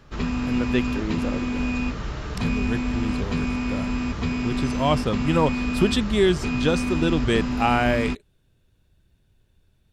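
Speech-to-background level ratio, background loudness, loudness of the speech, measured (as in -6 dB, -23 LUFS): 1.5 dB, -27.0 LUFS, -25.5 LUFS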